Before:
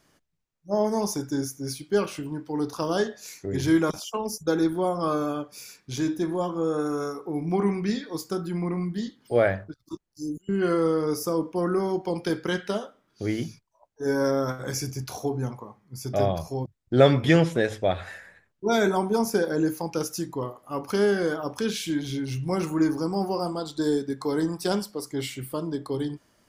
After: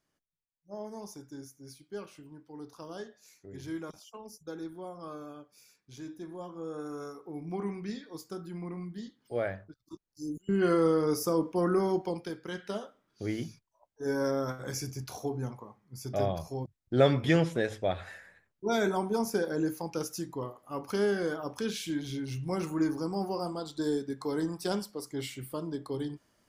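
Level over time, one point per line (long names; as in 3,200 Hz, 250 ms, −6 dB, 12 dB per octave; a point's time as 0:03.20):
0:06.02 −17 dB
0:07.03 −11 dB
0:09.84 −11 dB
0:10.51 −2 dB
0:12.00 −2 dB
0:12.37 −14 dB
0:12.83 −6 dB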